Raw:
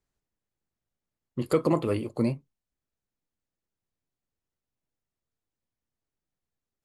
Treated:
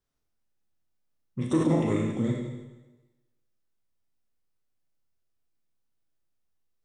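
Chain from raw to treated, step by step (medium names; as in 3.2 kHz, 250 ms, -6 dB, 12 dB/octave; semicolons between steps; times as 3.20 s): Schroeder reverb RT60 1.1 s, combs from 25 ms, DRR -1.5 dB; formant shift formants -4 st; trim -2 dB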